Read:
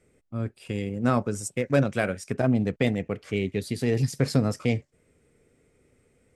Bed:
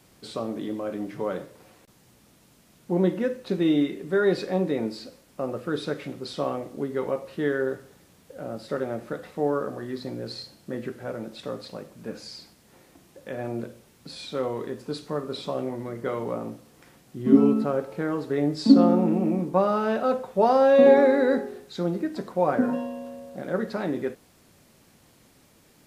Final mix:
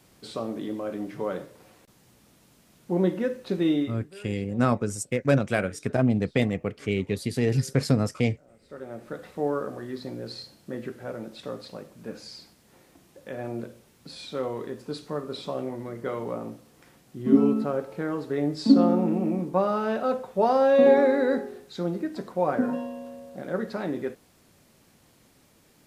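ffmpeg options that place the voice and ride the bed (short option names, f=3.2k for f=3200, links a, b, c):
-filter_complex "[0:a]adelay=3550,volume=0.5dB[a];[1:a]volume=20.5dB,afade=t=out:st=3.67:d=0.47:silence=0.0749894,afade=t=in:st=8.61:d=0.65:silence=0.0841395[b];[a][b]amix=inputs=2:normalize=0"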